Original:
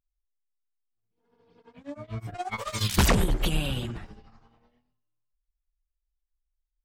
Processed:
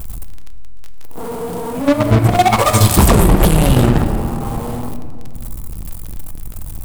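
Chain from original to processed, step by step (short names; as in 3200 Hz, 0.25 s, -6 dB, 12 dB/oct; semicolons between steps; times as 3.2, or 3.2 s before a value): zero-crossing step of -39 dBFS; band shelf 3100 Hz -12 dB 2.4 oct; compressor 5:1, threshold -31 dBFS, peak gain reduction 12.5 dB; in parallel at -12 dB: fuzz box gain 43 dB, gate -33 dBFS; on the sum: crackle 18/s -43 dBFS; reverse echo 69 ms -17.5 dB; on a send at -8.5 dB: reverb RT60 2.4 s, pre-delay 4 ms; on the sum: maximiser +21 dB; gain -1 dB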